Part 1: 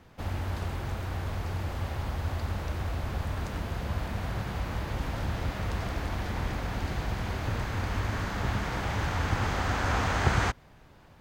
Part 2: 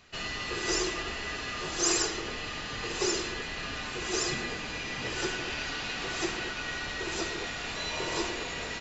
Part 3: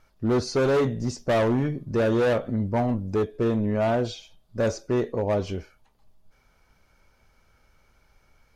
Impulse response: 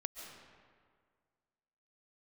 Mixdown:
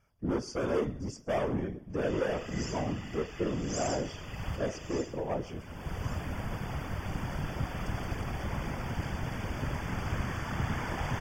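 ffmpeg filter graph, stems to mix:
-filter_complex "[0:a]adelay=2150,volume=3dB[link_01];[1:a]adelay=1900,volume=-6dB,afade=type=out:start_time=4.71:duration=0.49:silence=0.266073[link_02];[2:a]volume=-3dB,asplit=3[link_03][link_04][link_05];[link_04]volume=-23dB[link_06];[link_05]apad=whole_len=589000[link_07];[link_01][link_07]sidechaincompress=threshold=-43dB:ratio=4:attack=16:release=353[link_08];[link_06]aecho=0:1:127|254|381|508|635|762|889|1016:1|0.52|0.27|0.141|0.0731|0.038|0.0198|0.0103[link_09];[link_08][link_02][link_03][link_09]amix=inputs=4:normalize=0,afftfilt=real='hypot(re,im)*cos(2*PI*random(0))':imag='hypot(re,im)*sin(2*PI*random(1))':win_size=512:overlap=0.75,asuperstop=centerf=4000:order=20:qfactor=4.1"

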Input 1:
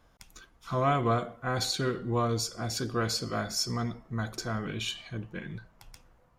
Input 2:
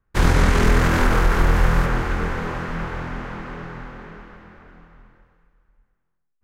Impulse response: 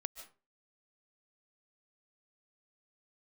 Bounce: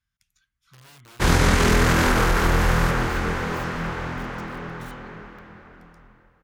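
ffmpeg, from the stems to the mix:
-filter_complex "[0:a]firequalizer=gain_entry='entry(110,0);entry(430,-29);entry(1600,0)':delay=0.05:min_phase=1,aeval=exprs='(mod(26.6*val(0)+1,2)-1)/26.6':channel_layout=same,volume=-15dB[link_01];[1:a]adynamicequalizer=threshold=0.0141:dfrequency=2800:dqfactor=0.7:tfrequency=2800:tqfactor=0.7:attack=5:release=100:ratio=0.375:range=2.5:mode=boostabove:tftype=highshelf,adelay=1050,volume=0.5dB[link_02];[link_01][link_02]amix=inputs=2:normalize=0,highpass=frequency=61:poles=1"

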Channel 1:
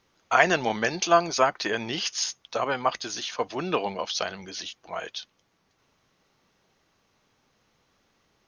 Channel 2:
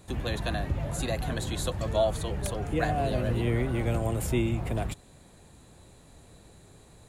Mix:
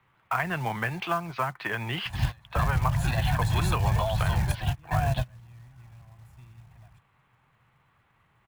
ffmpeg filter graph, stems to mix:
ffmpeg -i stem1.wav -i stem2.wav -filter_complex "[0:a]lowpass=frequency=3100:width=0.5412,lowpass=frequency=3100:width=1.3066,volume=-1dB,asplit=2[link_01][link_02];[1:a]aecho=1:1:1.2:0.81,alimiter=limit=-19dB:level=0:latency=1:release=189,adelay=2050,volume=2dB[link_03];[link_02]apad=whole_len=403120[link_04];[link_03][link_04]sidechaingate=range=-32dB:threshold=-42dB:ratio=16:detection=peak[link_05];[link_01][link_05]amix=inputs=2:normalize=0,equalizer=frequency=125:width_type=o:width=1:gain=12,equalizer=frequency=250:width_type=o:width=1:gain=-6,equalizer=frequency=500:width_type=o:width=1:gain=-5,equalizer=frequency=1000:width_type=o:width=1:gain=7,equalizer=frequency=2000:width_type=o:width=1:gain=4,equalizer=frequency=8000:width_type=o:width=1:gain=-6,acrossover=split=91|220[link_06][link_07][link_08];[link_06]acompressor=threshold=-25dB:ratio=4[link_09];[link_07]acompressor=threshold=-29dB:ratio=4[link_10];[link_08]acompressor=threshold=-27dB:ratio=4[link_11];[link_09][link_10][link_11]amix=inputs=3:normalize=0,acrusher=bits=5:mode=log:mix=0:aa=0.000001" out.wav

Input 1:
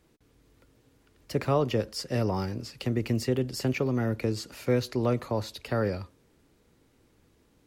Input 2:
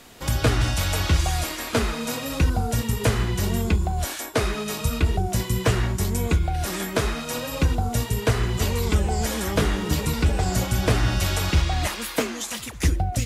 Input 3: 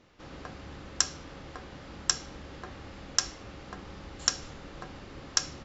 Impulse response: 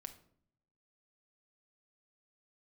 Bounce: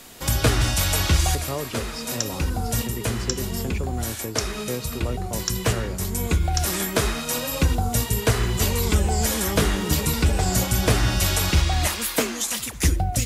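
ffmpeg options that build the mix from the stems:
-filter_complex "[0:a]lowpass=7800,volume=-5dB,asplit=2[link_01][link_02];[1:a]volume=-1dB,asplit=2[link_03][link_04];[link_04]volume=-7dB[link_05];[2:a]adelay=1200,volume=-5.5dB[link_06];[link_02]apad=whole_len=584666[link_07];[link_03][link_07]sidechaincompress=threshold=-35dB:ratio=8:attack=7.9:release=773[link_08];[3:a]atrim=start_sample=2205[link_09];[link_05][link_09]afir=irnorm=-1:irlink=0[link_10];[link_01][link_08][link_06][link_10]amix=inputs=4:normalize=0,highshelf=frequency=5700:gain=8.5"

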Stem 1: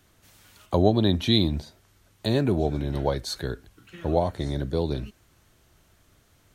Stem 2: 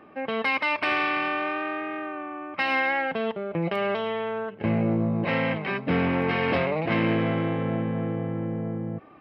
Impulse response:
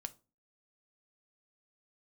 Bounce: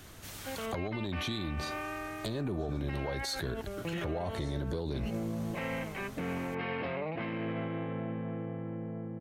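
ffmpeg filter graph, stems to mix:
-filter_complex "[0:a]acompressor=threshold=-29dB:ratio=16,aeval=exprs='0.2*sin(PI/2*2.24*val(0)/0.2)':channel_layout=same,volume=-0.5dB[link_01];[1:a]acontrast=69,lowpass=4300,adelay=300,volume=-16dB[link_02];[link_01][link_02]amix=inputs=2:normalize=0,alimiter=level_in=3dB:limit=-24dB:level=0:latency=1:release=64,volume=-3dB"

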